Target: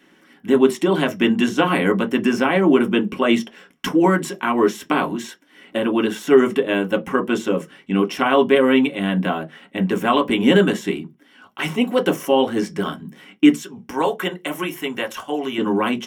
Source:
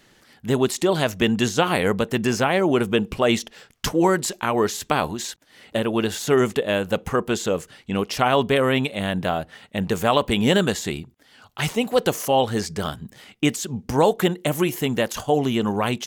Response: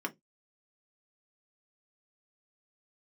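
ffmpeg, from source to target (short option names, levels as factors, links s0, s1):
-filter_complex "[0:a]asettb=1/sr,asplit=3[s0][s1][s2];[s0]atrim=end=13.544[s3];[s1]atrim=start=13.54:end=15.58,asetpts=PTS-STARTPTS,afade=t=in:d=0.004:c=qsin,afade=t=out:st=2.036:d=0.004:c=qsin,equalizer=f=220:t=o:w=1.8:g=-12.5[s4];[s2]atrim=start=15.576[s5];[s3][s4]acrossfade=d=0.004:c1=hsin:c2=qsin[s6];[s6][s5]acrossfade=d=0.004:c1=qsin:c2=hsin[s7];[1:a]atrim=start_sample=2205[s8];[s7][s8]afir=irnorm=-1:irlink=0,volume=0.841"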